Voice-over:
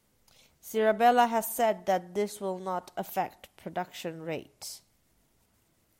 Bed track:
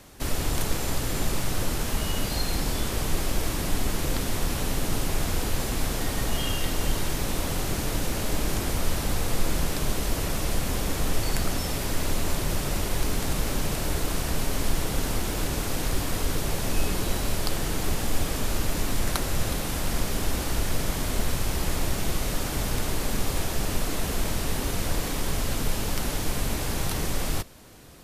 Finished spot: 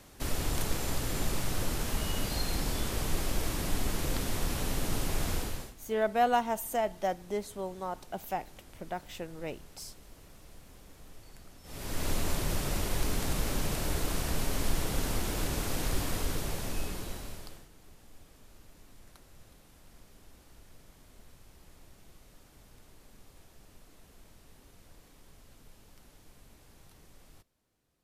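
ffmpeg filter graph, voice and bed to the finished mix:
-filter_complex "[0:a]adelay=5150,volume=0.631[s0];[1:a]volume=7.08,afade=t=out:st=5.33:d=0.41:silence=0.0841395,afade=t=in:st=11.63:d=0.46:silence=0.0794328,afade=t=out:st=16.04:d=1.64:silence=0.0562341[s1];[s0][s1]amix=inputs=2:normalize=0"

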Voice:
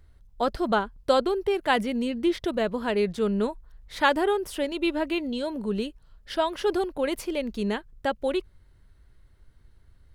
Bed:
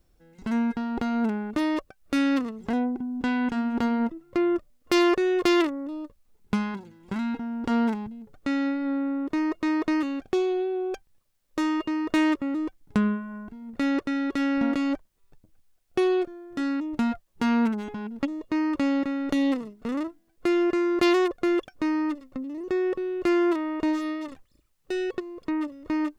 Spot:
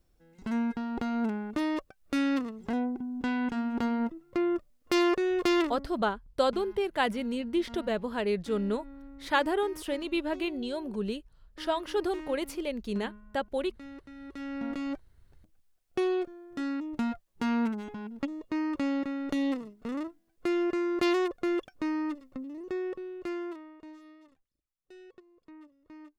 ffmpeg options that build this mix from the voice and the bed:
-filter_complex "[0:a]adelay=5300,volume=0.596[s0];[1:a]volume=3.55,afade=t=out:st=5.63:d=0.29:silence=0.149624,afade=t=in:st=14.15:d=1.05:silence=0.16788,afade=t=out:st=22.37:d=1.42:silence=0.133352[s1];[s0][s1]amix=inputs=2:normalize=0"

